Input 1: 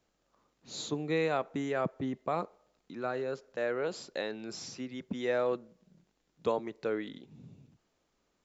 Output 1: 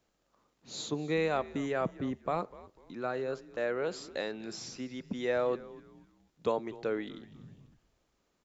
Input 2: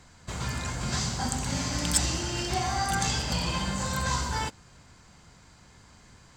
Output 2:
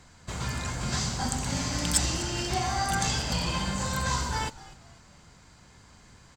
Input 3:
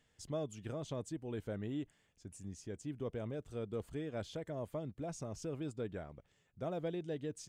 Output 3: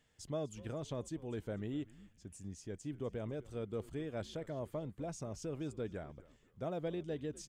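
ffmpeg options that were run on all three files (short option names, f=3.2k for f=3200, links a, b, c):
-filter_complex "[0:a]asplit=4[a][b][c][d];[b]adelay=247,afreqshift=-100,volume=-18.5dB[e];[c]adelay=494,afreqshift=-200,volume=-28.1dB[f];[d]adelay=741,afreqshift=-300,volume=-37.8dB[g];[a][e][f][g]amix=inputs=4:normalize=0"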